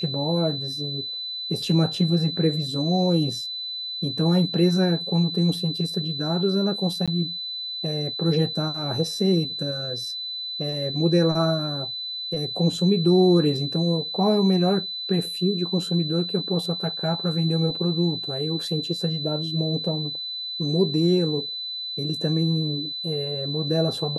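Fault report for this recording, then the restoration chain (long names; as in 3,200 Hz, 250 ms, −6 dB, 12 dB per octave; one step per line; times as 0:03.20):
whistle 4,000 Hz −29 dBFS
0:07.06–0:07.08: drop-out 16 ms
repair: notch filter 4,000 Hz, Q 30
repair the gap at 0:07.06, 16 ms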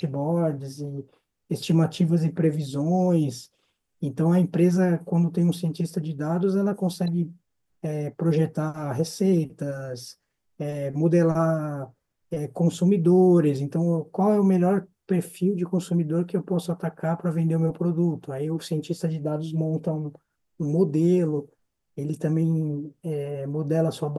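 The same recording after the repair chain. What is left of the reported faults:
none of them is left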